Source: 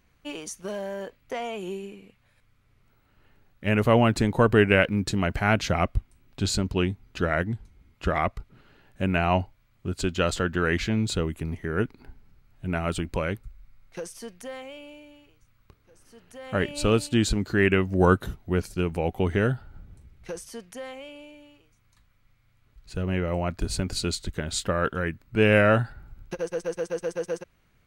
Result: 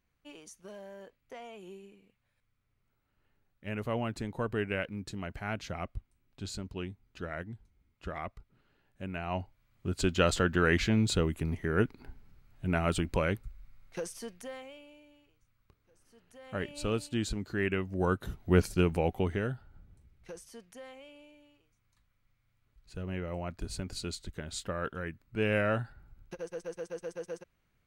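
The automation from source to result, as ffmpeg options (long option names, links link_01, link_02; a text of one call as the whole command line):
ffmpeg -i in.wav -af "volume=10.5dB,afade=type=in:start_time=9.25:duration=0.84:silence=0.237137,afade=type=out:start_time=14.09:duration=0.77:silence=0.375837,afade=type=in:start_time=18.19:duration=0.41:silence=0.251189,afade=type=out:start_time=18.6:duration=0.82:silence=0.251189" out.wav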